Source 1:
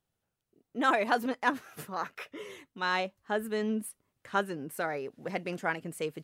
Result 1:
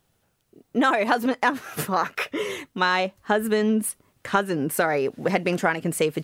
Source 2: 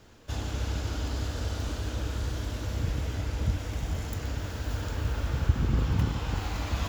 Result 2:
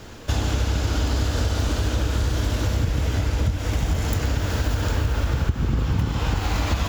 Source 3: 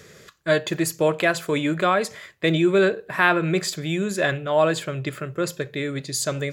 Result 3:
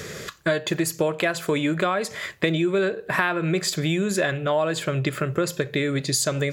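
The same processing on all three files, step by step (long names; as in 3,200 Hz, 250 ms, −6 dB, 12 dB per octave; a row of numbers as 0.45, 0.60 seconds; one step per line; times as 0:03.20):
downward compressor 6 to 1, threshold −33 dBFS
loudness normalisation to −24 LKFS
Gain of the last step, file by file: +15.0, +14.5, +12.0 decibels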